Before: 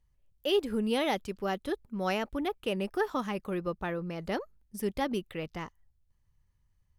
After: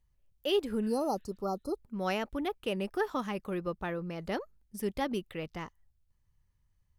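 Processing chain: spectral replace 0.85–1.74 s, 1.4–4.1 kHz both; trim -1.5 dB

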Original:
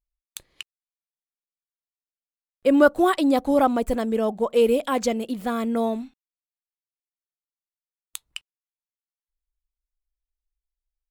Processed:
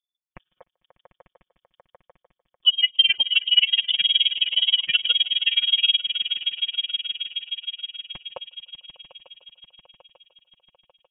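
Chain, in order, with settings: spectral gate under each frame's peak -25 dB strong; high-pass 140 Hz 6 dB/octave; tilt shelf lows +6.5 dB, about 870 Hz; comb 5.4 ms, depth 77%; peak limiter -10.5 dBFS, peak gain reduction 10 dB; echo with a slow build-up 149 ms, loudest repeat 5, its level -14 dB; tremolo 19 Hz, depth 84%; transient shaper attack +4 dB, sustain -9 dB; frequency inversion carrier 3.5 kHz

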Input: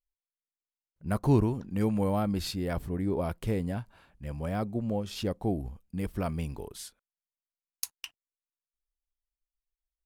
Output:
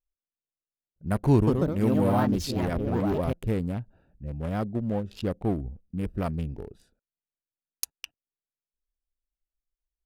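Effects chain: local Wiener filter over 41 samples; 1.33–3.54 s: ever faster or slower copies 142 ms, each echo +3 st, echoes 2; trim +3 dB

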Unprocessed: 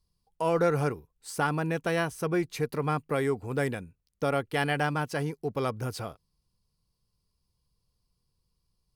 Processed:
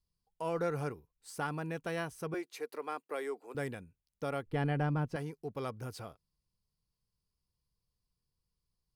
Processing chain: 2.34–3.55 s: high-pass 330 Hz 24 dB/octave; 4.46–5.16 s: tilt EQ -3.5 dB/octave; trim -9 dB

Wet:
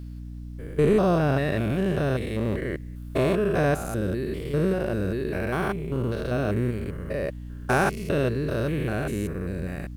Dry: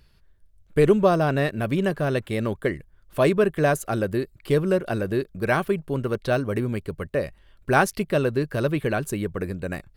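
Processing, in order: spectrogram pixelated in time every 200 ms; hum 60 Hz, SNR 11 dB; bit crusher 11-bit; trim +1.5 dB

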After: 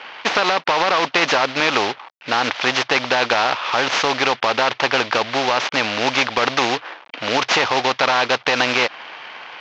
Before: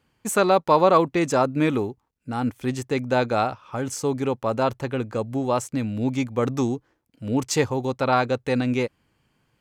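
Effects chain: CVSD coder 32 kbps; Chebyshev band-pass 740–2900 Hz, order 2; in parallel at 0 dB: compression, threshold -31 dBFS, peak gain reduction 14.5 dB; on the sum: loudness maximiser +19 dB; spectrum-flattening compressor 2:1; trim -1 dB

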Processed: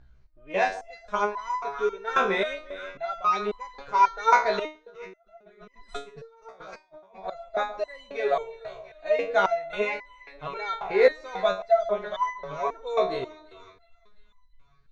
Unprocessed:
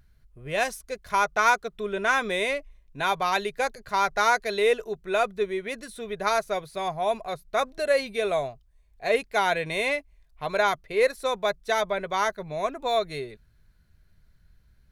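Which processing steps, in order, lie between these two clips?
drifting ripple filter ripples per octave 0.8, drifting -2.9 Hz, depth 7 dB; steep low-pass 6.7 kHz 36 dB/octave; peaking EQ 690 Hz +9 dB 2.9 oct; two-band feedback delay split 1.2 kHz, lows 143 ms, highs 349 ms, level -14.5 dB; 4.65–7.24 s: compressor with a negative ratio -43 dBFS, ratio -1; bass shelf 64 Hz +9.5 dB; resonator arpeggio 3.7 Hz 64–1000 Hz; trim +3.5 dB

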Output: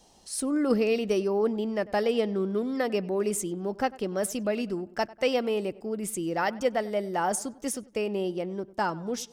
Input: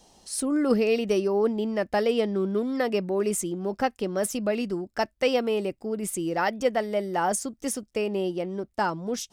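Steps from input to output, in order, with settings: filtered feedback delay 97 ms, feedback 49%, low-pass 2.6 kHz, level -20 dB; trim -2 dB

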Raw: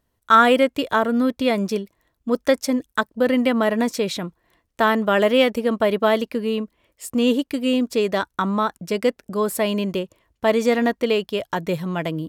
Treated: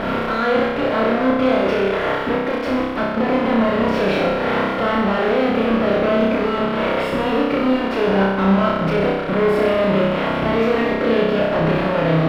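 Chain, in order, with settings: spectral levelling over time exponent 0.4; spectral noise reduction 7 dB; 1.38–2.33 s: peaking EQ 170 Hz -12 dB 1.2 oct; compression, threshold -28 dBFS, peak gain reduction 19 dB; fuzz box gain 49 dB, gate -45 dBFS; distance through air 400 m; on a send: flutter echo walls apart 5.3 m, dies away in 1.1 s; on the sum: trim -5.5 dB

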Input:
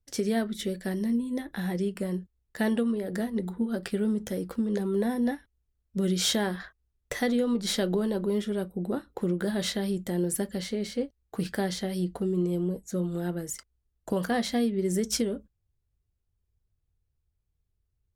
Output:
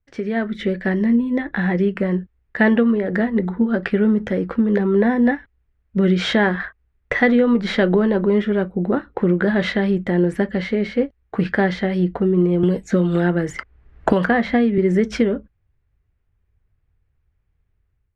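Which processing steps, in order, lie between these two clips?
level rider gain up to 8.5 dB; resonant low-pass 2 kHz, resonance Q 1.8; 12.63–14.78 s: three bands compressed up and down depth 100%; trim +2 dB

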